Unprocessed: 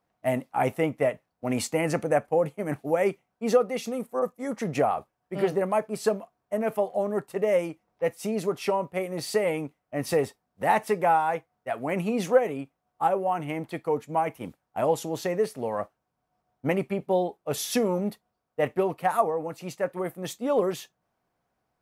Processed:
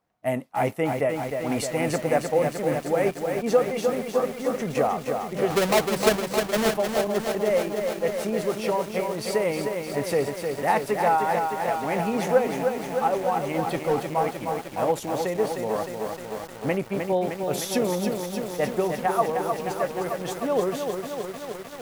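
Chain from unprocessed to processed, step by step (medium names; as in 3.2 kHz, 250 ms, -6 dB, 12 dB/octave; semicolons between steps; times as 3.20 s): 5.50–6.75 s: square wave that keeps the level; 13.54–14.03 s: power-law waveshaper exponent 0.7; bit-crushed delay 307 ms, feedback 80%, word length 7-bit, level -5 dB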